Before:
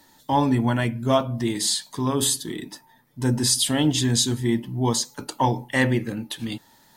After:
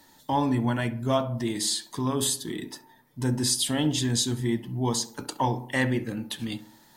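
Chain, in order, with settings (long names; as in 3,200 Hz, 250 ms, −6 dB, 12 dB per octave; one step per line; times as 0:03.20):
in parallel at −1 dB: downward compressor, threshold −29 dBFS, peak gain reduction 14 dB
on the sum: tape delay 65 ms, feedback 57%, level −12 dB, low-pass 1,300 Hz
level −6.5 dB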